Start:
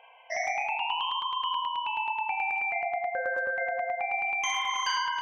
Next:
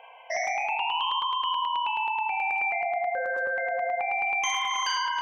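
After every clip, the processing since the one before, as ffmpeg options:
-filter_complex "[0:a]equalizer=f=540:w=0.42:g=4,bandreject=f=50:t=h:w=6,bandreject=f=100:t=h:w=6,bandreject=f=150:t=h:w=6,bandreject=f=200:t=h:w=6,bandreject=f=250:t=h:w=6,bandreject=f=300:t=h:w=6,acrossover=split=3000[s0][s1];[s0]alimiter=level_in=1.12:limit=0.0631:level=0:latency=1:release=33,volume=0.891[s2];[s2][s1]amix=inputs=2:normalize=0,volume=1.41"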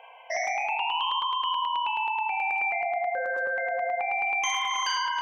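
-af "lowshelf=f=130:g=-6"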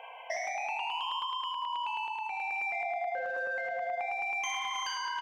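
-filter_complex "[0:a]asplit=2[s0][s1];[s1]asoftclip=type=tanh:threshold=0.0237,volume=0.316[s2];[s0][s2]amix=inputs=2:normalize=0,acompressor=threshold=0.0224:ratio=6,aecho=1:1:185:0.266"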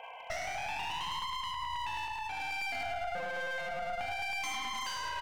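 -af "aeval=exprs='clip(val(0),-1,0.00891)':c=same"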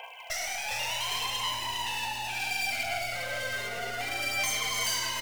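-filter_complex "[0:a]aphaser=in_gain=1:out_gain=1:delay=4.8:decay=0.45:speed=0.68:type=sinusoidal,crystalizer=i=7.5:c=0,asplit=7[s0][s1][s2][s3][s4][s5][s6];[s1]adelay=406,afreqshift=-120,volume=0.531[s7];[s2]adelay=812,afreqshift=-240,volume=0.272[s8];[s3]adelay=1218,afreqshift=-360,volume=0.138[s9];[s4]adelay=1624,afreqshift=-480,volume=0.0708[s10];[s5]adelay=2030,afreqshift=-600,volume=0.0359[s11];[s6]adelay=2436,afreqshift=-720,volume=0.0184[s12];[s0][s7][s8][s9][s10][s11][s12]amix=inputs=7:normalize=0,volume=0.562"

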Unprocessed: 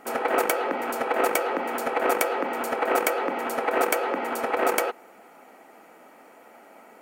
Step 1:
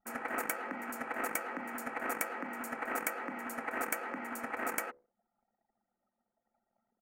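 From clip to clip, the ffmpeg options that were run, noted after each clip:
-af "bandreject=f=70.67:t=h:w=4,bandreject=f=141.34:t=h:w=4,bandreject=f=212.01:t=h:w=4,bandreject=f=282.68:t=h:w=4,bandreject=f=353.35:t=h:w=4,bandreject=f=424.02:t=h:w=4,bandreject=f=494.69:t=h:w=4,bandreject=f=565.36:t=h:w=4,anlmdn=0.631,firequalizer=gain_entry='entry(250,0);entry(380,-13);entry(1800,0);entry(3400,-15);entry(6900,-2)':delay=0.05:min_phase=1,volume=0.501"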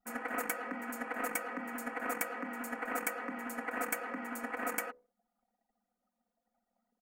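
-af "aecho=1:1:4.1:0.87,volume=0.708"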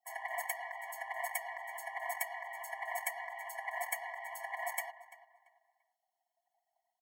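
-filter_complex "[0:a]asplit=2[s0][s1];[s1]adelay=340,lowpass=f=2900:p=1,volume=0.168,asplit=2[s2][s3];[s3]adelay=340,lowpass=f=2900:p=1,volume=0.3,asplit=2[s4][s5];[s5]adelay=340,lowpass=f=2900:p=1,volume=0.3[s6];[s0][s2][s4][s6]amix=inputs=4:normalize=0,afftfilt=real='re*eq(mod(floor(b*sr/1024/570),2),1)':imag='im*eq(mod(floor(b*sr/1024/570),2),1)':win_size=1024:overlap=0.75,volume=1.26"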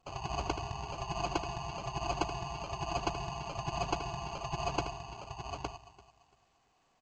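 -filter_complex "[0:a]acrusher=samples=24:mix=1:aa=0.000001,asplit=2[s0][s1];[s1]aecho=0:1:78|863:0.355|0.596[s2];[s0][s2]amix=inputs=2:normalize=0,volume=1.41" -ar 16000 -c:a pcm_alaw

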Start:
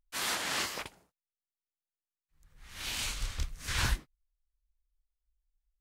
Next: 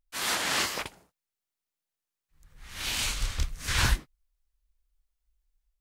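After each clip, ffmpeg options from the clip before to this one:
-af "dynaudnorm=f=100:g=5:m=1.88"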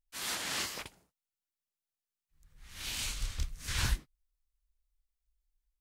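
-af "equalizer=f=870:w=0.36:g=-5,volume=0.531"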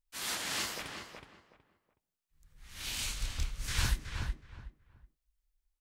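-filter_complex "[0:a]asplit=2[s0][s1];[s1]adelay=371,lowpass=f=1900:p=1,volume=0.596,asplit=2[s2][s3];[s3]adelay=371,lowpass=f=1900:p=1,volume=0.25,asplit=2[s4][s5];[s5]adelay=371,lowpass=f=1900:p=1,volume=0.25[s6];[s0][s2][s4][s6]amix=inputs=4:normalize=0"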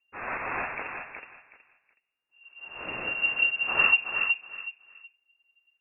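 -af "lowpass=f=2400:t=q:w=0.5098,lowpass=f=2400:t=q:w=0.6013,lowpass=f=2400:t=q:w=0.9,lowpass=f=2400:t=q:w=2.563,afreqshift=-2800,volume=2.66"

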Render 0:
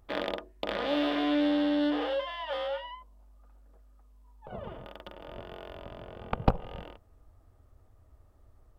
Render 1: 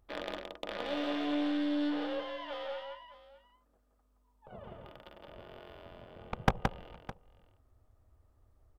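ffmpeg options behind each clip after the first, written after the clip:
-af "aeval=exprs='0.376*(cos(1*acos(clip(val(0)/0.376,-1,1)))-cos(1*PI/2))+0.075*(cos(3*acos(clip(val(0)/0.376,-1,1)))-cos(3*PI/2))+0.133*(cos(4*acos(clip(val(0)/0.376,-1,1)))-cos(4*PI/2))+0.075*(cos(6*acos(clip(val(0)/0.376,-1,1)))-cos(6*PI/2))':c=same,aecho=1:1:171|611:0.596|0.141"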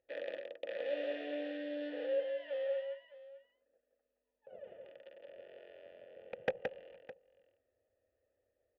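-filter_complex "[0:a]asplit=3[s0][s1][s2];[s0]bandpass=f=530:t=q:w=8,volume=1[s3];[s1]bandpass=f=1840:t=q:w=8,volume=0.501[s4];[s2]bandpass=f=2480:t=q:w=8,volume=0.355[s5];[s3][s4][s5]amix=inputs=3:normalize=0,volume=2"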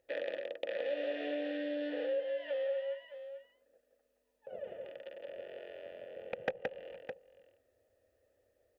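-af "acompressor=threshold=0.00708:ratio=2.5,volume=2.37"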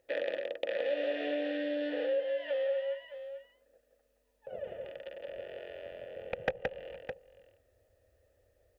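-af "asubboost=boost=3.5:cutoff=120,volume=1.58"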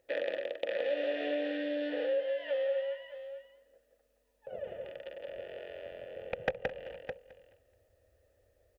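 -af "aecho=1:1:214|428|642:0.133|0.04|0.012"

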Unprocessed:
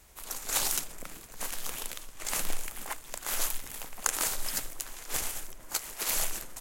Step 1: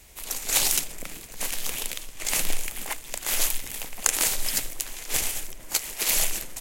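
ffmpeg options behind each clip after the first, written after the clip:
-filter_complex "[0:a]highshelf=f=1700:t=q:w=1.5:g=7.5,acrossover=split=1100[s0][s1];[s0]acontrast=70[s2];[s2][s1]amix=inputs=2:normalize=0,volume=0.891"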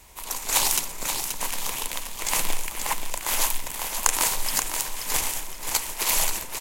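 -af "equalizer=f=980:t=o:w=0.51:g=11.5,aecho=1:1:529|1058|1587|2116:0.473|0.147|0.0455|0.0141,acrusher=bits=9:mode=log:mix=0:aa=0.000001"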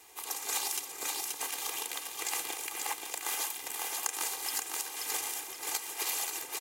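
-af "highpass=250,aecho=1:1:2.5:0.8,acompressor=threshold=0.0447:ratio=3,volume=0.531"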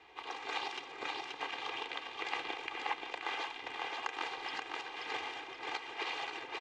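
-af "lowpass=f=3400:w=0.5412,lowpass=f=3400:w=1.3066,volume=1.19"

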